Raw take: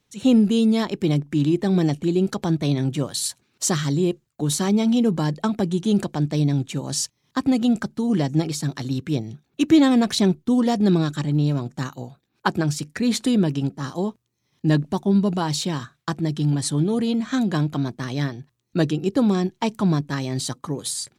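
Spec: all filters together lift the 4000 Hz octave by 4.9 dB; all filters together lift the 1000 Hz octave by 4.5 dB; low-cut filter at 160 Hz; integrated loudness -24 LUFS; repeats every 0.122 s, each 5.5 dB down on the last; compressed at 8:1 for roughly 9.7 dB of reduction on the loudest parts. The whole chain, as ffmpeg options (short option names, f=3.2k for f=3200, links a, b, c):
-af "highpass=160,equalizer=f=1k:t=o:g=5.5,equalizer=f=4k:t=o:g=5.5,acompressor=threshold=-20dB:ratio=8,aecho=1:1:122|244|366|488|610|732|854:0.531|0.281|0.149|0.079|0.0419|0.0222|0.0118,volume=0.5dB"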